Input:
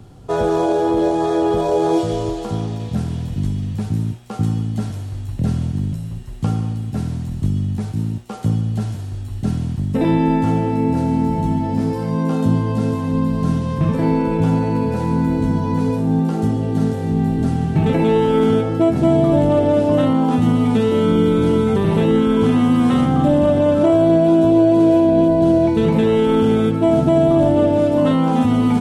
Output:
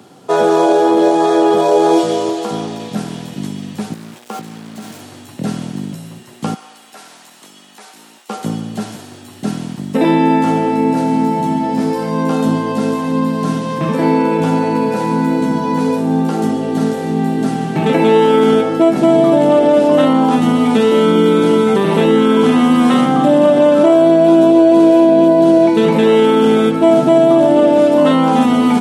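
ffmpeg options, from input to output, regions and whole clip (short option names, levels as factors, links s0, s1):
-filter_complex "[0:a]asettb=1/sr,asplit=3[s0][s1][s2];[s0]atrim=end=3.934[s3];[s1]atrim=start=3.93:end=5.01,asetpts=PTS-STARTPTS,afade=t=in:d=0.004:c=qsin,afade=t=out:st=1.076:d=0.004:c=qsin,asplit=2[s4][s5];[s5]adelay=13,volume=0.282[s6];[s4][s6]amix=inputs=2:normalize=0,atrim=end_sample=47628,acompressor=threshold=0.0501:ratio=20:attack=3.2:release=140:knee=1:detection=peak,acrusher=bits=6:mix=0:aa=0.5[s7];[s2]atrim=start=5.006[s8];[s3][s7]acrossfade=d=0.004:c1=hsin:c2=qsin[s9];[s9][s8]acrossfade=d=0.004:c1=qsin:c2=hsin,asettb=1/sr,asplit=3[s10][s11][s12];[s10]atrim=end=6.544[s13];[s11]atrim=start=6.54:end=8.29,asetpts=PTS-STARTPTS,afade=t=in:d=0.004:c=qsin,afade=t=out:st=1.746:d=0.004:c=qsin,highpass=820,acompressor=threshold=0.00398:ratio=1.5:attack=3.2:release=140:knee=1:detection=peak[s14];[s12]atrim=start=8.286[s15];[s13][s14]acrossfade=d=0.004:c1=hsin:c2=qsin[s16];[s16][s15]acrossfade=d=0.004:c1=qsin:c2=hsin,highpass=f=180:w=0.5412,highpass=f=180:w=1.3066,lowshelf=f=360:g=-6.5,alimiter=level_in=2.99:limit=0.891:release=50:level=0:latency=1,volume=0.891"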